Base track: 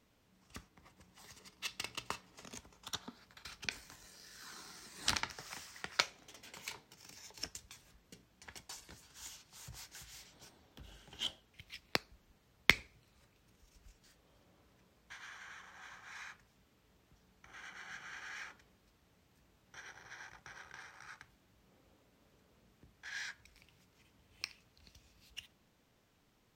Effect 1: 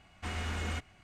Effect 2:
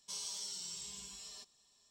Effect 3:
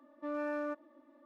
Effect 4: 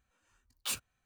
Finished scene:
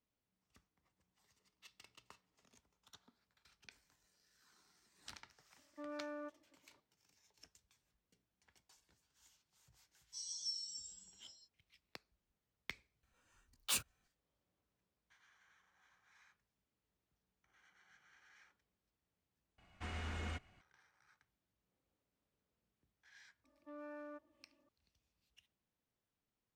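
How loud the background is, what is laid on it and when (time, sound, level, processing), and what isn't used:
base track -20 dB
5.55 s: add 3 -10 dB + expander -57 dBFS
10.04 s: add 2 -3 dB + spectral contrast expander 2.5:1
13.03 s: add 4 -1 dB
19.58 s: replace with 1 -7.5 dB + treble shelf 7.7 kHz -9 dB
23.44 s: add 3 -14 dB

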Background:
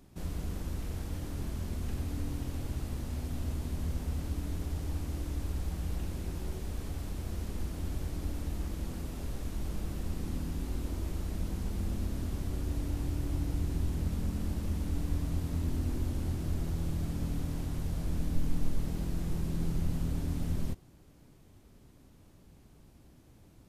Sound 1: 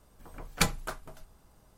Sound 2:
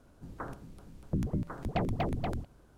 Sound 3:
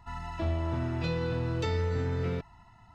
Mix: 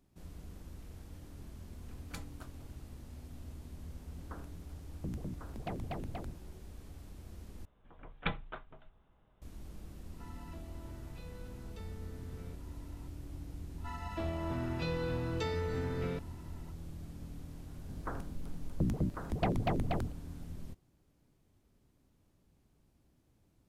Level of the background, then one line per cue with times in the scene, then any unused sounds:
background -12.5 dB
1.53 s: add 1 -17.5 dB + peak limiter -13.5 dBFS
3.91 s: add 2 -9 dB
7.65 s: replace with 1 -7.5 dB + resampled via 8 kHz
10.14 s: add 3 -7 dB + compression 3:1, threshold -45 dBFS
13.78 s: add 3 -3.5 dB + high-pass 130 Hz
17.67 s: add 2 -0.5 dB + endings held to a fixed fall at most 520 dB/s

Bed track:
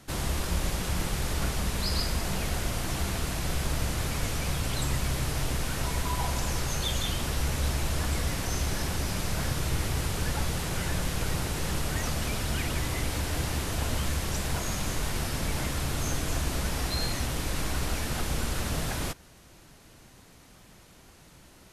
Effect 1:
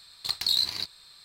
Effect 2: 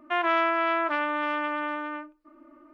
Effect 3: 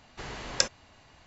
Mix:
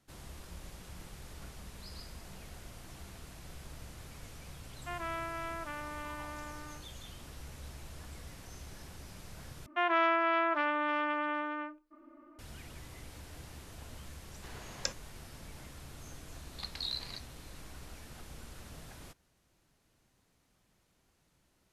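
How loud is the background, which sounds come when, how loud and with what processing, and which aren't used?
bed track -19 dB
4.76 s: add 2 -15 dB
9.66 s: replace with 2 -4 dB
14.25 s: add 3 -10.5 dB
16.34 s: add 1 -8 dB + Bessel low-pass 3.1 kHz

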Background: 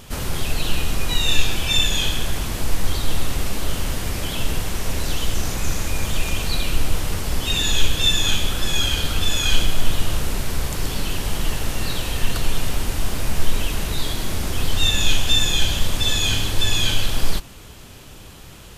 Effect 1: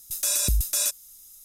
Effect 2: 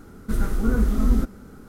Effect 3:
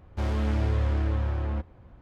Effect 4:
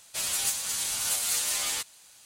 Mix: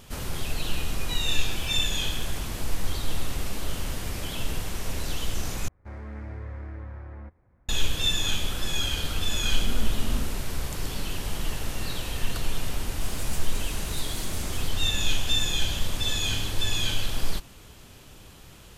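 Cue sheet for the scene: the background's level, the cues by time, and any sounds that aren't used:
background -7 dB
1.50 s: add 1 -17.5 dB + compression 3:1, threshold -33 dBFS
5.68 s: replace with 3 -12 dB + resonant high shelf 2.5 kHz -6 dB, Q 3
9.03 s: add 2 -12.5 dB + loudspeaker Doppler distortion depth 0.17 ms
12.86 s: add 4 -12.5 dB

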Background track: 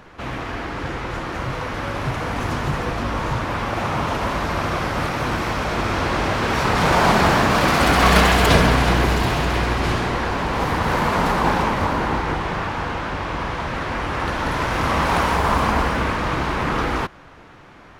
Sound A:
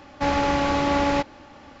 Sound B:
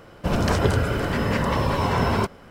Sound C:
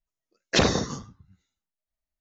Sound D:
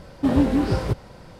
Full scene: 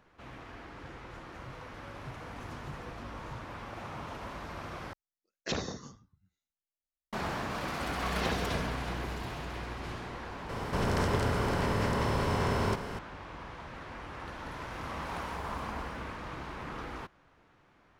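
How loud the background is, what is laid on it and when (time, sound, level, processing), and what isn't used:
background track -19 dB
4.93 s: replace with C -13.5 dB
7.67 s: add C -12.5 dB + CVSD coder 32 kbps
10.49 s: add B -12.5 dB + spectral levelling over time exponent 0.4
not used: A, D

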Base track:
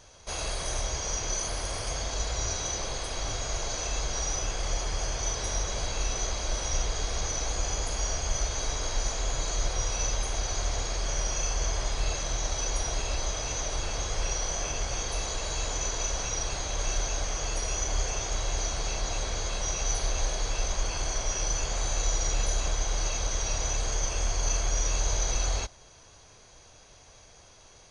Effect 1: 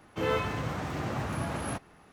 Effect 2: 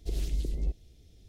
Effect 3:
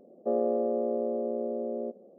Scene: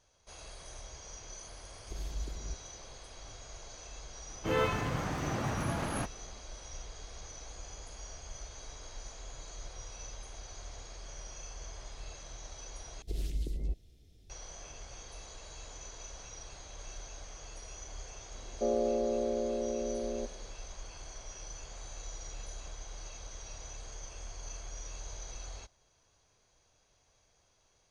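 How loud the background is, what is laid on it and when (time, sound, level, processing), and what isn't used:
base track -16.5 dB
1.83 s: add 2 -9.5 dB
4.28 s: add 1 -1 dB + tape noise reduction on one side only decoder only
13.02 s: replace with 2 -4 dB
18.35 s: add 3 -3 dB

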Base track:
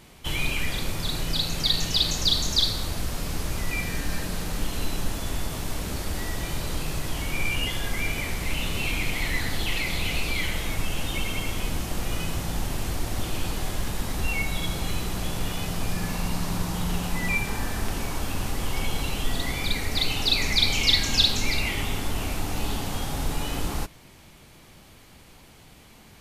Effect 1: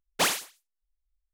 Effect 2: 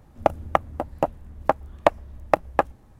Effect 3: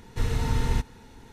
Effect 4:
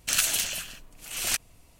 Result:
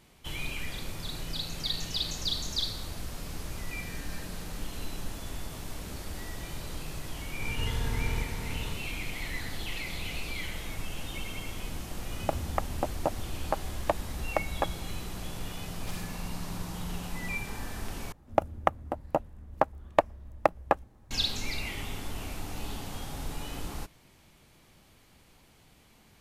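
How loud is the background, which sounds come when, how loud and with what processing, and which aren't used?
base track -9 dB
7.42 s: add 3 -11 dB + spectral levelling over time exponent 0.2
12.03 s: add 2 + peak limiter -13 dBFS
15.67 s: add 1 -17.5 dB + transformer saturation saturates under 3 kHz
18.12 s: replace with 2 -5 dB
not used: 4

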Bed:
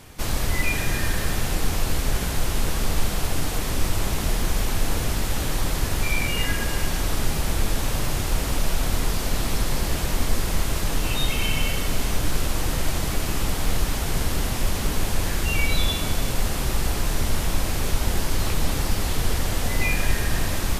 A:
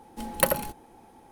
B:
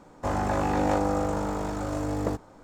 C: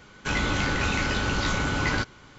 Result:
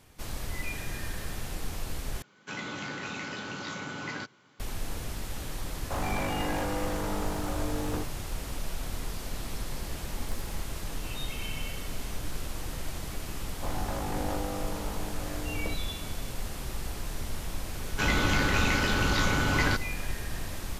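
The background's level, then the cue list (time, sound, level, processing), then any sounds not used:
bed -12 dB
2.22 s: replace with C -10.5 dB + high-pass 130 Hz 24 dB/octave
5.67 s: add B -2 dB + hard clipper -28 dBFS
9.89 s: add A -13 dB + compression, threshold -34 dBFS
13.39 s: add B -9.5 dB
17.73 s: add C -0.5 dB

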